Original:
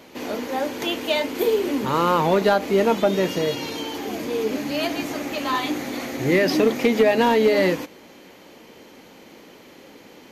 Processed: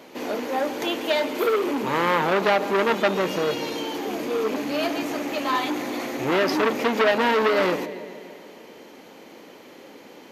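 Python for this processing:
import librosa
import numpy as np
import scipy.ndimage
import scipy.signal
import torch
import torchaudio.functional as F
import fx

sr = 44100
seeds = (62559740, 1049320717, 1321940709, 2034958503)

y = fx.rattle_buzz(x, sr, strikes_db=-32.0, level_db=-28.0)
y = fx.highpass(y, sr, hz=350.0, slope=6)
y = fx.tilt_shelf(y, sr, db=3.0, hz=1200.0)
y = fx.echo_bbd(y, sr, ms=143, stages=4096, feedback_pct=65, wet_db=-16.5)
y = fx.transformer_sat(y, sr, knee_hz=1800.0)
y = y * 10.0 ** (1.5 / 20.0)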